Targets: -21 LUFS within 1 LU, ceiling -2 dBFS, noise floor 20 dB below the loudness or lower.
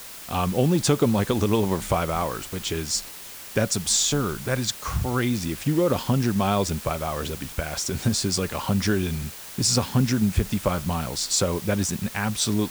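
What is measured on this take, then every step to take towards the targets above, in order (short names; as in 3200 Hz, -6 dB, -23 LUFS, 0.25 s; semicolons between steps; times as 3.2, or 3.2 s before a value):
noise floor -40 dBFS; noise floor target -45 dBFS; loudness -24.5 LUFS; peak -8.0 dBFS; loudness target -21.0 LUFS
-> denoiser 6 dB, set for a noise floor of -40 dBFS; gain +3.5 dB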